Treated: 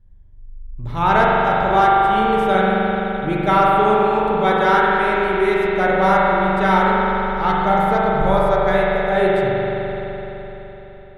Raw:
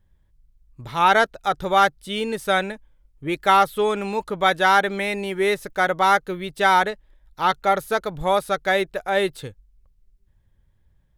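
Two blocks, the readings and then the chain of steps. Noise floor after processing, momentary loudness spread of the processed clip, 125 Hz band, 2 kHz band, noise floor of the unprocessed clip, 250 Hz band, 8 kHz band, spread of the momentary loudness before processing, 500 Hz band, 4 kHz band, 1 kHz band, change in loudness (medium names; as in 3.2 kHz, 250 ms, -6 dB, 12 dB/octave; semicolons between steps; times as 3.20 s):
-39 dBFS, 10 LU, +11.0 dB, +2.0 dB, -62 dBFS, +9.0 dB, no reading, 11 LU, +6.5 dB, -2.5 dB, +5.0 dB, +4.5 dB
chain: tilt EQ -2.5 dB/octave; spring tank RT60 4 s, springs 42 ms, chirp 70 ms, DRR -5.5 dB; trim -2.5 dB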